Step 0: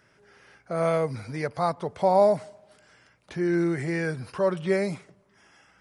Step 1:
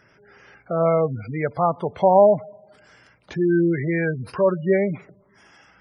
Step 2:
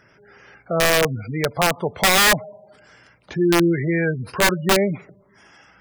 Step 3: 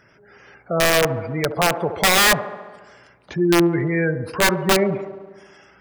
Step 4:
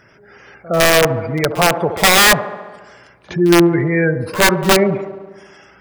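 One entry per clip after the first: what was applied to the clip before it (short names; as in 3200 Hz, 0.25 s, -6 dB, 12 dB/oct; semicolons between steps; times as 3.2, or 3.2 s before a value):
spectral gate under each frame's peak -20 dB strong; gain +5.5 dB
wrapped overs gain 12 dB; gain +2 dB
band-limited delay 70 ms, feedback 70%, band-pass 540 Hz, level -9 dB
pre-echo 64 ms -19 dB; gain +5 dB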